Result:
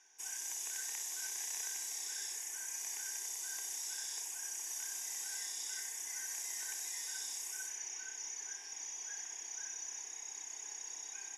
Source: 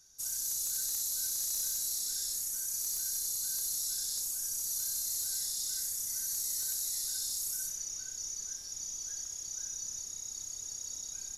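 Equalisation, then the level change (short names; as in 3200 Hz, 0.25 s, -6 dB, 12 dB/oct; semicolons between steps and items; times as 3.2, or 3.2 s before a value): BPF 680–3600 Hz; fixed phaser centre 860 Hz, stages 8; +12.0 dB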